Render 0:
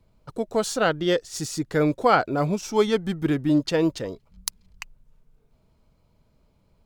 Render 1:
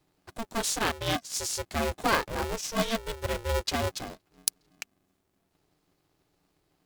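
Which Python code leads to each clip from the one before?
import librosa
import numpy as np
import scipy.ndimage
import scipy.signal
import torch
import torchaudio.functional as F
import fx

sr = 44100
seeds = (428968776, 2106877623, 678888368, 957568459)

y = scipy.signal.sosfilt(scipy.signal.butter(4, 41.0, 'highpass', fs=sr, output='sos'), x)
y = fx.high_shelf(y, sr, hz=2700.0, db=12.0)
y = y * np.sign(np.sin(2.0 * np.pi * 230.0 * np.arange(len(y)) / sr))
y = y * 10.0 ** (-8.5 / 20.0)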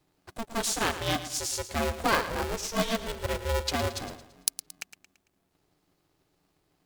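y = fx.echo_feedback(x, sr, ms=112, feedback_pct=43, wet_db=-12.5)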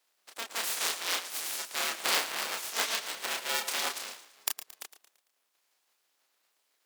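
y = fx.spec_clip(x, sr, under_db=24)
y = fx.chorus_voices(y, sr, voices=4, hz=0.58, base_ms=30, depth_ms=3.8, mix_pct=40)
y = scipy.signal.sosfilt(scipy.signal.butter(2, 420.0, 'highpass', fs=sr, output='sos'), y)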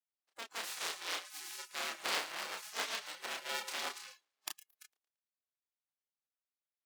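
y = fx.noise_reduce_blind(x, sr, reduce_db=22)
y = fx.high_shelf(y, sr, hz=8200.0, db=-10.0)
y = y * 10.0 ** (-6.0 / 20.0)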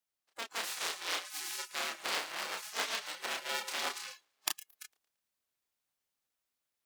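y = fx.rider(x, sr, range_db=5, speed_s=0.5)
y = y * 10.0 ** (3.5 / 20.0)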